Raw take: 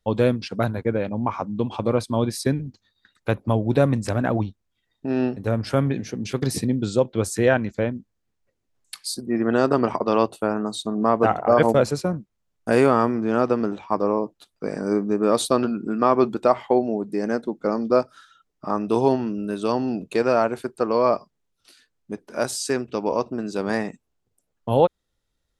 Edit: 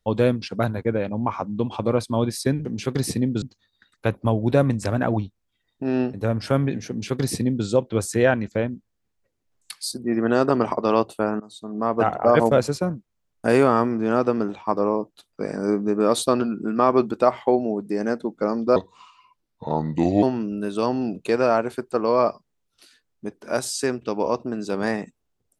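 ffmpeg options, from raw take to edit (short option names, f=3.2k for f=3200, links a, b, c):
-filter_complex "[0:a]asplit=6[a][b][c][d][e][f];[a]atrim=end=2.652[g];[b]atrim=start=6.118:end=6.892[h];[c]atrim=start=2.648:end=10.63,asetpts=PTS-STARTPTS,afade=t=out:st=7.978:d=0.004:c=hsin:silence=0.0841395[i];[d]atrim=start=10.63:end=17.994,asetpts=PTS-STARTPTS,afade=t=in:d=0.77:silence=0.0841395[j];[e]atrim=start=17.99:end=19.09,asetpts=PTS-STARTPTS,asetrate=33075,aresample=44100[k];[f]atrim=start=19.086[l];[g][h]acrossfade=d=0.004:c1=hsin:c2=hsin[m];[i][j]concat=n=2:v=0:a=1[n];[m][n]acrossfade=d=0.004:c1=hsin:c2=hsin[o];[o][k]acrossfade=d=0.004:c1=hsin:c2=hsin[p];[p][l]acrossfade=d=0.004:c1=hsin:c2=hsin"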